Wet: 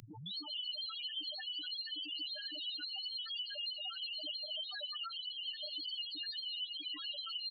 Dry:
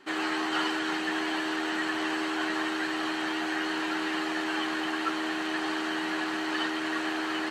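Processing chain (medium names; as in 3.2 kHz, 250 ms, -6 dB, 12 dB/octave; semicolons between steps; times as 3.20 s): tape start-up on the opening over 0.35 s; slow attack 711 ms; dynamic bell 1.2 kHz, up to +3 dB, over -45 dBFS, Q 1.1; formant-preserving pitch shift -5 st; resonant high shelf 2.6 kHz +11.5 dB, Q 1.5; feedback comb 110 Hz, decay 0.27 s, harmonics all, mix 60%; peak limiter -24 dBFS, peak gain reduction 5.5 dB; comb 6.7 ms, depth 81%; loudest bins only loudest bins 2; three bands compressed up and down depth 100%; trim +1 dB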